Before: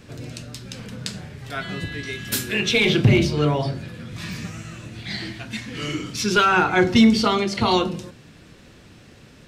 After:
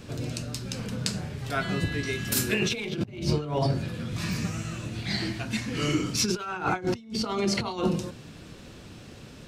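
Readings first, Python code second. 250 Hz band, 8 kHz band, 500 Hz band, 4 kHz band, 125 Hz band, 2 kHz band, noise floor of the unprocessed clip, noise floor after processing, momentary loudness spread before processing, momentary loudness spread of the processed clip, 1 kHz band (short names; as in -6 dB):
-8.0 dB, -0.5 dB, -7.0 dB, -6.5 dB, -5.0 dB, -9.0 dB, -48 dBFS, -46 dBFS, 19 LU, 19 LU, -9.5 dB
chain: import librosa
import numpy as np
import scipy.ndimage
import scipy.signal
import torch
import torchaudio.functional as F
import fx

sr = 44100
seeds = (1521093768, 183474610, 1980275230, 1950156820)

y = fx.peak_eq(x, sr, hz=1900.0, db=-4.5, octaves=0.64)
y = fx.over_compress(y, sr, threshold_db=-24.0, ratio=-0.5)
y = fx.dynamic_eq(y, sr, hz=3400.0, q=3.4, threshold_db=-46.0, ratio=4.0, max_db=-6)
y = y * librosa.db_to_amplitude(-2.0)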